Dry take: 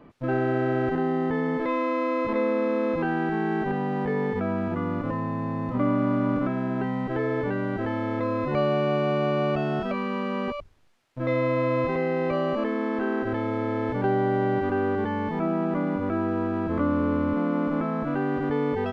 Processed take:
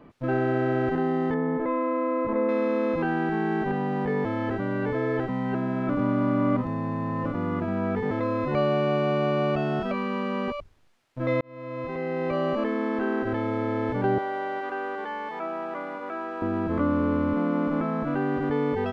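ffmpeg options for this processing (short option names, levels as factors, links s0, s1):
-filter_complex "[0:a]asettb=1/sr,asplit=3[s0][s1][s2];[s0]atrim=end=1.344[s3];[s1]atrim=start=1.34:end=2.49,asetpts=PTS-STARTPTS,afade=t=in:d=0.004:c=qsin,afade=t=out:st=1.146:d=0.004:c=qsin,lowpass=1500[s4];[s2]atrim=start=2.486[s5];[s3][s4]acrossfade=d=0.004:c1=hsin:c2=qsin[s6];[s6][s5]acrossfade=d=0.004:c1=qsin:c2=hsin,asettb=1/sr,asplit=3[s7][s8][s9];[s7]atrim=end=14.184[s10];[s8]atrim=start=14.18:end=16.42,asetpts=PTS-STARTPTS,afade=t=in:d=0.004:c=qsin,afade=t=out:st=2.236:d=0.004:c=qsin,highpass=620[s11];[s9]atrim=start=16.416[s12];[s10][s11]acrossfade=d=0.004:c1=hsin:c2=qsin[s13];[s13][s12]acrossfade=d=0.004:c1=qsin:c2=hsin,asplit=4[s14][s15][s16][s17];[s14]atrim=end=4.252[s18];[s15]atrim=start=4.248:end=8.112,asetpts=PTS-STARTPTS,areverse[s19];[s16]atrim=start=8.108:end=11.41,asetpts=PTS-STARTPTS,afade=t=out:st=3.298:d=0.004:c=hsin[s20];[s17]atrim=start=11.41,asetpts=PTS-STARTPTS,afade=t=in:d=1.05[s21];[s18][s19]acrossfade=d=0.004:c1=hsin:c2=hsin[s22];[s20][s21]concat=n=2:v=0:a=1[s23];[s22][s23]acrossfade=d=0.004:c1=hsin:c2=hsin"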